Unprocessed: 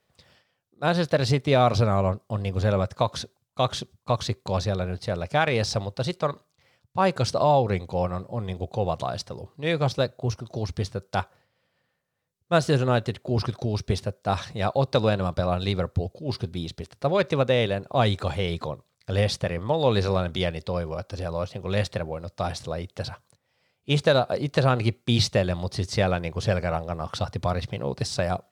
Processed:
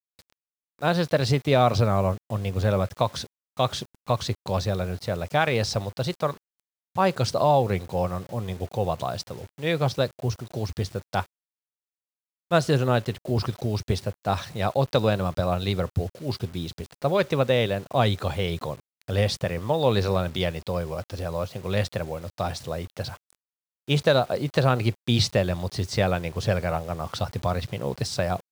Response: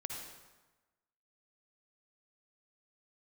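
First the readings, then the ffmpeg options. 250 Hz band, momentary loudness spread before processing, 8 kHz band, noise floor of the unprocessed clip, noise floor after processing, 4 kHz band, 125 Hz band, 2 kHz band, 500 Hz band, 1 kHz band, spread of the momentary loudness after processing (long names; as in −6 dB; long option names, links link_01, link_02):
0.0 dB, 10 LU, +0.5 dB, −75 dBFS, below −85 dBFS, 0.0 dB, 0.0 dB, 0.0 dB, 0.0 dB, 0.0 dB, 10 LU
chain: -af "highpass=frequency=44:width=0.5412,highpass=frequency=44:width=1.3066,acrusher=bits=7:mix=0:aa=0.000001"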